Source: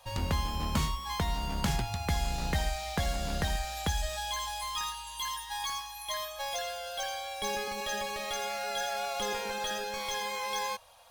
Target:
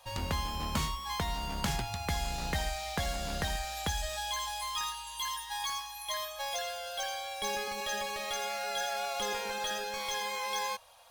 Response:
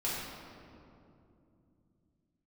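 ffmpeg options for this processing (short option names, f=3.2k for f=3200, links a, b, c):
-af "lowshelf=f=390:g=-4.5"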